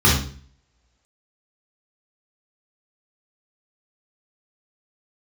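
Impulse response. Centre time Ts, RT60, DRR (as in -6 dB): 41 ms, 0.45 s, -6.5 dB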